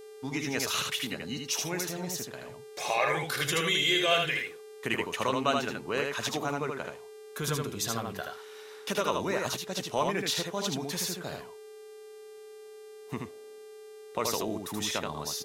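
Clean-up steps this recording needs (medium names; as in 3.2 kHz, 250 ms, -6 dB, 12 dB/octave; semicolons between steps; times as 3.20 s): de-hum 397.3 Hz, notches 32; band-stop 430 Hz, Q 30; inverse comb 78 ms -3.5 dB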